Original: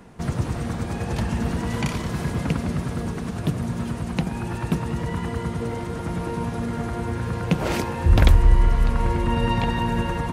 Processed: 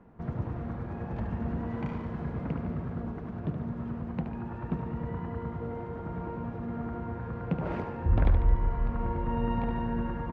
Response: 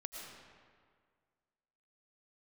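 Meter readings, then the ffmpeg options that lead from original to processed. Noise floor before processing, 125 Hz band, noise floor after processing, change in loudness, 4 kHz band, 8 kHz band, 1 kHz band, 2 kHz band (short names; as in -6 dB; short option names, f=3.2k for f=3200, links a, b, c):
-31 dBFS, -9.0 dB, -39 dBFS, -8.5 dB, under -20 dB, under -35 dB, -9.0 dB, -14.0 dB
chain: -af "lowpass=1.4k,aecho=1:1:73|146|219|292|365|438|511:0.398|0.219|0.12|0.0662|0.0364|0.02|0.011,volume=-9dB"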